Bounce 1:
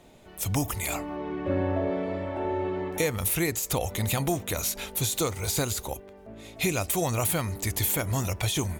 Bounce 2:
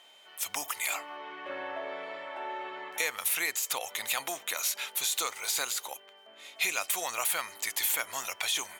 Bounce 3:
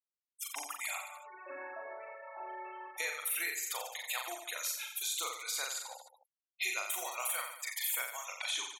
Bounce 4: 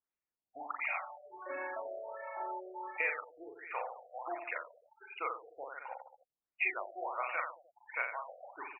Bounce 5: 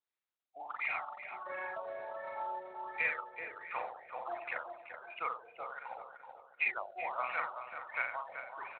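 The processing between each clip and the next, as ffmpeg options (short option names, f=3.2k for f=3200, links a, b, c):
-af "highpass=1.2k,highshelf=f=4.6k:g=-6,aeval=exprs='val(0)+0.001*sin(2*PI*3100*n/s)':c=same,volume=3.5dB"
-filter_complex "[0:a]afftfilt=real='re*gte(hypot(re,im),0.0251)':imag='im*gte(hypot(re,im),0.0251)':win_size=1024:overlap=0.75,lowshelf=f=160:t=q:w=3:g=11,asplit=2[a][b];[b]aecho=0:1:40|88|145.6|214.7|297.7:0.631|0.398|0.251|0.158|0.1[c];[a][c]amix=inputs=2:normalize=0,volume=-6.5dB"
-af "afftfilt=real='re*lt(b*sr/1024,740*pow(2900/740,0.5+0.5*sin(2*PI*1.4*pts/sr)))':imag='im*lt(b*sr/1024,740*pow(2900/740,0.5+0.5*sin(2*PI*1.4*pts/sr)))':win_size=1024:overlap=0.75,volume=4.5dB"
-filter_complex "[0:a]highpass=590,asplit=2[a][b];[b]adelay=380,lowpass=f=1.4k:p=1,volume=-6dB,asplit=2[c][d];[d]adelay=380,lowpass=f=1.4k:p=1,volume=0.47,asplit=2[e][f];[f]adelay=380,lowpass=f=1.4k:p=1,volume=0.47,asplit=2[g][h];[h]adelay=380,lowpass=f=1.4k:p=1,volume=0.47,asplit=2[i][j];[j]adelay=380,lowpass=f=1.4k:p=1,volume=0.47,asplit=2[k][l];[l]adelay=380,lowpass=f=1.4k:p=1,volume=0.47[m];[c][e][g][i][k][m]amix=inputs=6:normalize=0[n];[a][n]amix=inputs=2:normalize=0,volume=1dB" -ar 16000 -c:a libspeex -b:a 21k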